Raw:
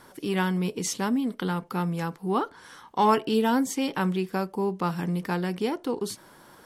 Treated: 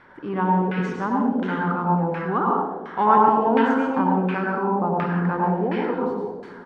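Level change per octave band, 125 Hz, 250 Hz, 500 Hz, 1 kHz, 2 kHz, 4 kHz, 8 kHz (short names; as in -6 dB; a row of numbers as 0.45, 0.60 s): +4.5 dB, +4.5 dB, +5.0 dB, +8.5 dB, +5.5 dB, n/a, under -20 dB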